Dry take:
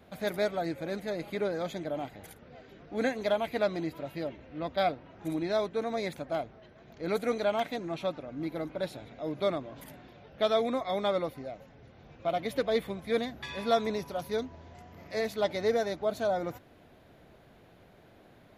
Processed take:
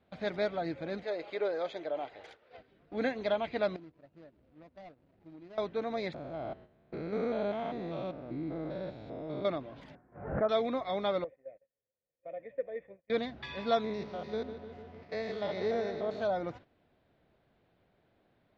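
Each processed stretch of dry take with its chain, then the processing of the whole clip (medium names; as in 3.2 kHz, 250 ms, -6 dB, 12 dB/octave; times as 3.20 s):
1.03–2.57 s: resonant low shelf 300 Hz -12.5 dB, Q 1.5 + tape noise reduction on one side only encoder only
3.76–5.58 s: median filter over 41 samples + compression 4:1, threshold -48 dBFS
6.14–9.45 s: spectrogram pixelated in time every 200 ms + tilt shelf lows +4 dB, about 1.3 kHz
9.95–10.49 s: steep low-pass 1.7 kHz + swell ahead of each attack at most 85 dB/s
11.24–13.10 s: cascade formant filter e + gate -57 dBFS, range -16 dB
13.84–16.22 s: spectrogram pixelated in time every 100 ms + high-pass 47 Hz + filtered feedback delay 151 ms, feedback 69%, low-pass 4.1 kHz, level -10 dB
whole clip: gate -48 dBFS, range -11 dB; low-pass 4.8 kHz 24 dB/octave; trim -2.5 dB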